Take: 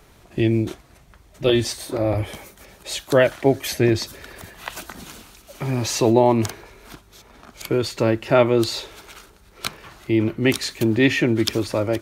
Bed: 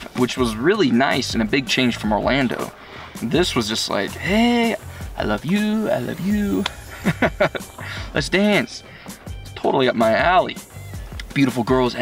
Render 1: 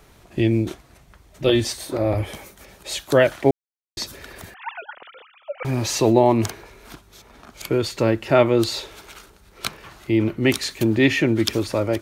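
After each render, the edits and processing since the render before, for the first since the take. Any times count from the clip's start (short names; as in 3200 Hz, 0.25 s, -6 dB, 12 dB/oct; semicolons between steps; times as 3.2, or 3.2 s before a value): 3.51–3.97 mute; 4.54–5.65 sine-wave speech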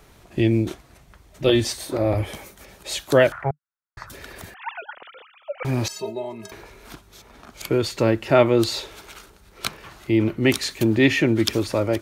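3.32–4.1 EQ curve 150 Hz 0 dB, 260 Hz -24 dB, 670 Hz -4 dB, 1400 Hz +11 dB, 3600 Hz -23 dB; 5.88–6.52 metallic resonator 190 Hz, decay 0.25 s, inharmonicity 0.03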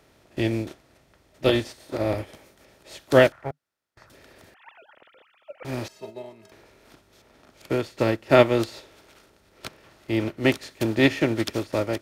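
per-bin compression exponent 0.6; upward expander 2.5:1, over -26 dBFS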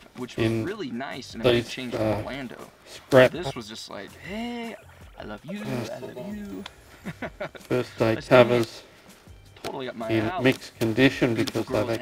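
add bed -16 dB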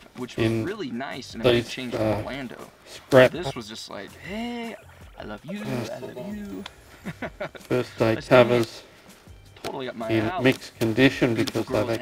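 gain +1 dB; limiter -3 dBFS, peak gain reduction 2 dB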